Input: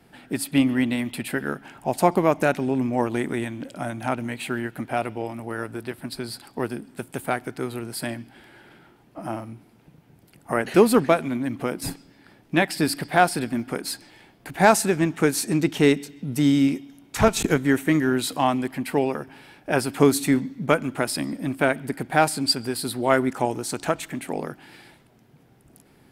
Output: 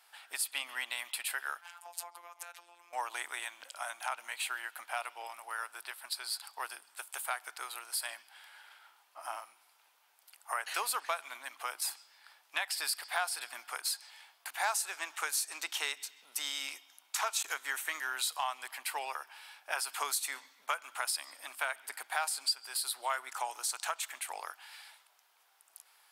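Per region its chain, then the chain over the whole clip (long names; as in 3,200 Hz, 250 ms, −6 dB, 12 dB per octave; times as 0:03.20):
0:01.61–0:02.93: downward compressor 12 to 1, threshold −31 dBFS + phases set to zero 173 Hz
whole clip: high-pass filter 1,000 Hz 24 dB per octave; parametric band 1,900 Hz −7 dB 1.2 octaves; downward compressor 3 to 1, threshold −34 dBFS; level +2 dB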